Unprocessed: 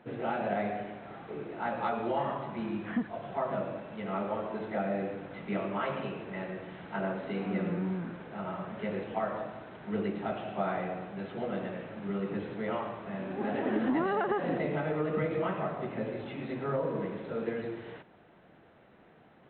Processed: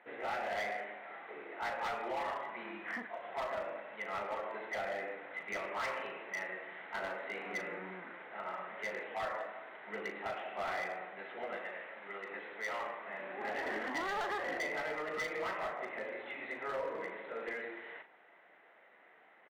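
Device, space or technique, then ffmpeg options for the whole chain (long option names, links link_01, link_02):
megaphone: -filter_complex "[0:a]highpass=620,lowpass=3200,equalizer=frequency=2000:width_type=o:width=0.29:gain=11,asoftclip=type=hard:threshold=-32dB,asplit=2[link_01][link_02];[link_02]adelay=38,volume=-9dB[link_03];[link_01][link_03]amix=inputs=2:normalize=0,asettb=1/sr,asplit=3[link_04][link_05][link_06];[link_04]atrim=end=11.574[link_07];[link_05]atrim=start=11.57:end=12.81,asetpts=PTS-STARTPTS,afade=type=in:duration=0.004:curve=qsin,afade=type=out:start_time=1.236:duration=0.004:curve=qsin,lowshelf=frequency=300:gain=-8.5[link_08];[link_06]atrim=start=12.806[link_09];[link_07][link_08]acrossfade=duration=0.004:curve1=hsin:curve2=qsin[link_10];[link_10][link_09]acrossfade=duration=0.004:curve1=qsin:curve2=hsin,volume=-1.5dB"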